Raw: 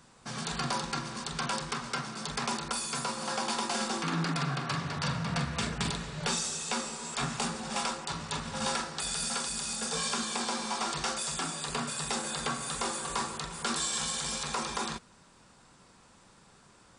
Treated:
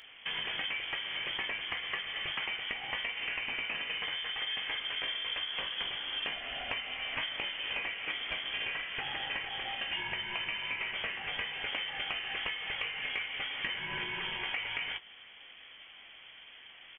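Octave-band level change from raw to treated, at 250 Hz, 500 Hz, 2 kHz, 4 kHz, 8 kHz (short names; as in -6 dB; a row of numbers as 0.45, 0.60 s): -17.0 dB, -9.0 dB, +4.0 dB, +2.0 dB, under -40 dB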